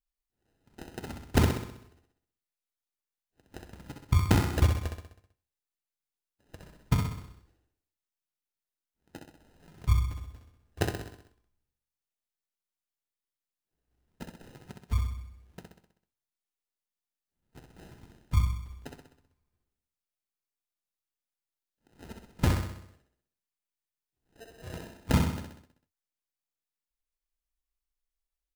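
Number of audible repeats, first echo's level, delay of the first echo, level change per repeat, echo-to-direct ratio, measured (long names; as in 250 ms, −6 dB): 6, −5.0 dB, 64 ms, −5.5 dB, −3.5 dB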